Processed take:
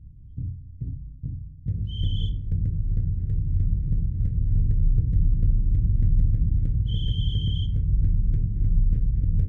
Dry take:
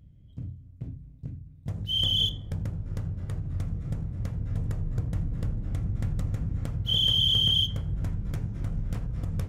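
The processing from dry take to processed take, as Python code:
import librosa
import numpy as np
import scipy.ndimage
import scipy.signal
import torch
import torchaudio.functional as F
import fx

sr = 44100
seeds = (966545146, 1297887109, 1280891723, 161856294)

y = scipy.signal.sosfilt(scipy.signal.cheby1(2, 1.0, [430.0, 1800.0], 'bandstop', fs=sr, output='sos'), x)
y = fx.tilt_eq(y, sr, slope=-4.5)
y = F.gain(torch.from_numpy(y), -8.0).numpy()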